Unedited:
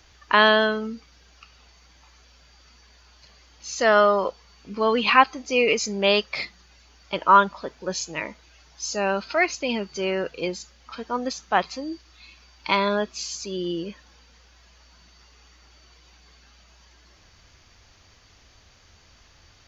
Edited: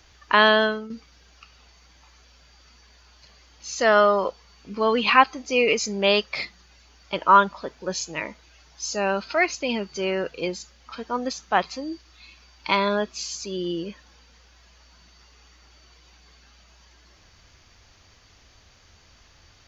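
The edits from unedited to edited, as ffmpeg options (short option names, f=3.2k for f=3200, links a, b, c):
-filter_complex "[0:a]asplit=2[a][b];[a]atrim=end=0.9,asetpts=PTS-STARTPTS,afade=t=out:st=0.65:d=0.25:silence=0.316228[c];[b]atrim=start=0.9,asetpts=PTS-STARTPTS,afade=t=in:d=0.004:c=hsin:silence=0.316228[d];[c][d]concat=n=2:v=0:a=1"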